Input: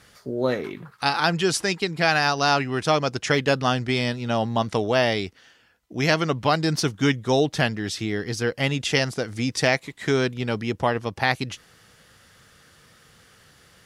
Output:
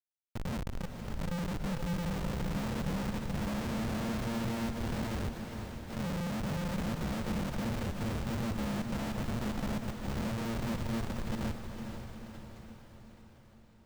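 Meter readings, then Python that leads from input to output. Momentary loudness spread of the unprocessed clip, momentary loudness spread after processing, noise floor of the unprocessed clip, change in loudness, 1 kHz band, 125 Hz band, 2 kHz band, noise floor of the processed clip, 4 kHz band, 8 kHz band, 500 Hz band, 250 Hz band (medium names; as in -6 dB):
7 LU, 9 LU, -56 dBFS, -13.0 dB, -16.0 dB, -8.0 dB, -18.5 dB, -58 dBFS, -18.0 dB, -14.5 dB, -17.5 dB, -7.5 dB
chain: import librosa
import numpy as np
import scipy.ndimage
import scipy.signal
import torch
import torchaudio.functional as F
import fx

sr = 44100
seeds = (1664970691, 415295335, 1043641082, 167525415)

p1 = fx.bit_reversed(x, sr, seeds[0], block=128)
p2 = fx.noise_reduce_blind(p1, sr, reduce_db=8)
p3 = p2 + 0.63 * np.pad(p2, (int(4.0 * sr / 1000.0), 0))[:len(p2)]
p4 = fx.over_compress(p3, sr, threshold_db=-23.0, ratio=-0.5)
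p5 = p3 + (p4 * 10.0 ** (0.0 / 20.0))
p6 = fx.auto_swell(p5, sr, attack_ms=166.0)
p7 = fx.ladder_lowpass(p6, sr, hz=370.0, resonance_pct=20)
p8 = fx.schmitt(p7, sr, flips_db=-45.0)
p9 = p8 + fx.echo_diffused(p8, sr, ms=482, feedback_pct=57, wet_db=-6.5, dry=0)
p10 = np.repeat(scipy.signal.resample_poly(p9, 1, 2), 2)[:len(p9)]
p11 = fx.pre_swell(p10, sr, db_per_s=91.0)
y = p11 * 10.0 ** (1.5 / 20.0)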